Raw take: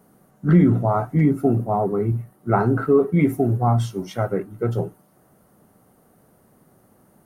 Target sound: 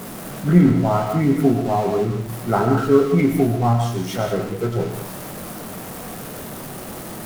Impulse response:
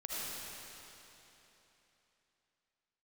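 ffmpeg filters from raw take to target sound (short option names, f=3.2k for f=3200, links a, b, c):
-filter_complex "[0:a]aeval=exprs='val(0)+0.5*0.0447*sgn(val(0))':c=same,asplit=2[a][b];[1:a]atrim=start_sample=2205,afade=t=out:st=0.24:d=0.01,atrim=end_sample=11025,adelay=22[c];[b][c]afir=irnorm=-1:irlink=0,volume=-3dB[d];[a][d]amix=inputs=2:normalize=0,aeval=exprs='0.841*(cos(1*acos(clip(val(0)/0.841,-1,1)))-cos(1*PI/2))+0.075*(cos(3*acos(clip(val(0)/0.841,-1,1)))-cos(3*PI/2))':c=same,volume=1dB"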